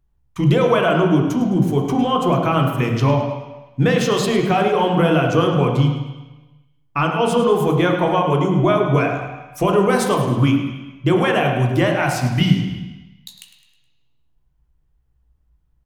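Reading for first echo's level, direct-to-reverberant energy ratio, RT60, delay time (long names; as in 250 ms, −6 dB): −11.0 dB, 1.5 dB, 1.1 s, 105 ms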